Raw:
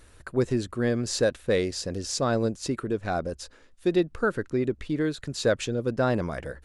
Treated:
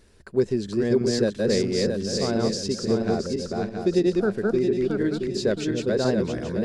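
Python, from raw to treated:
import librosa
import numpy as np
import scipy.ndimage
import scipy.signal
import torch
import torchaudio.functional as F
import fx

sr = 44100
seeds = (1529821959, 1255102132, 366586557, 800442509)

y = fx.reverse_delay_fb(x, sr, ms=336, feedback_pct=58, wet_db=-1)
y = fx.graphic_eq_31(y, sr, hz=(200, 400, 1250, 5000, 10000), db=(12, 9, -6, 7, -5))
y = y * 10.0 ** (-4.0 / 20.0)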